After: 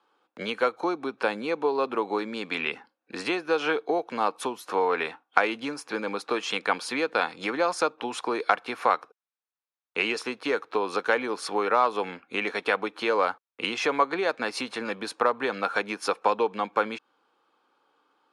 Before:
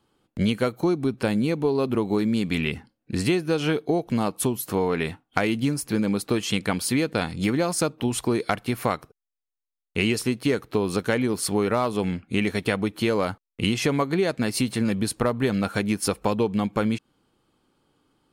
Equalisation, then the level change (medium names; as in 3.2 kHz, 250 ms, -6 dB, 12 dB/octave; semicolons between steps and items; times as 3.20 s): cabinet simulation 320–9400 Hz, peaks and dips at 380 Hz -5 dB, 630 Hz -7 dB, 2 kHz -7 dB, 3 kHz -7 dB, 4.4 kHz -4 dB, 8.1 kHz -5 dB; three-band isolator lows -17 dB, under 410 Hz, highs -15 dB, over 4 kHz; +6.5 dB